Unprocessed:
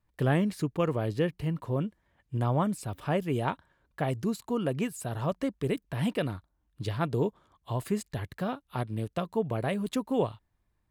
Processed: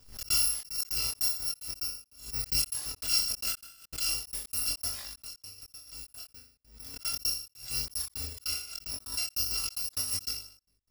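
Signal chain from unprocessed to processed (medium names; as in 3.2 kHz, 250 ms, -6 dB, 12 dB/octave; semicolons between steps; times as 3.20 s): bit-reversed sample order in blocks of 256 samples; 4.99–6.94 s: compression 10:1, threshold -40 dBFS, peak gain reduction 16 dB; peaking EQ 4.9 kHz +13 dB 0.31 oct; on a send: flutter echo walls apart 6.9 m, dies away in 0.54 s; on the sum: trance gate "xx.xxx.x." 149 bpm -60 dB; chorus voices 2, 0.19 Hz, delay 23 ms, depth 3.4 ms; swell ahead of each attack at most 110 dB/s; trim -1 dB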